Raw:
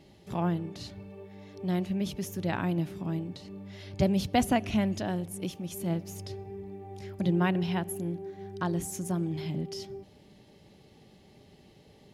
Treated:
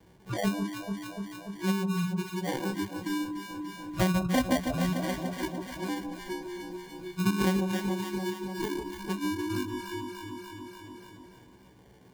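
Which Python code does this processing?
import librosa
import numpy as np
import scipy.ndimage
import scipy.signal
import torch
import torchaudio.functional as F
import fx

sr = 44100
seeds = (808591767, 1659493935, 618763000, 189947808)

p1 = fx.frame_reverse(x, sr, frame_ms=32.0)
p2 = fx.high_shelf(p1, sr, hz=3900.0, db=-5.5)
p3 = fx.level_steps(p2, sr, step_db=14)
p4 = p2 + (p3 * 10.0 ** (-1.0 / 20.0))
p5 = fx.spec_topn(p4, sr, count=32)
p6 = fx.sample_hold(p5, sr, seeds[0], rate_hz=1300.0, jitter_pct=0)
p7 = fx.noise_reduce_blind(p6, sr, reduce_db=24)
p8 = fx.echo_alternate(p7, sr, ms=146, hz=980.0, feedback_pct=69, wet_db=-6)
p9 = fx.band_squash(p8, sr, depth_pct=70)
y = p9 * 10.0 ** (3.0 / 20.0)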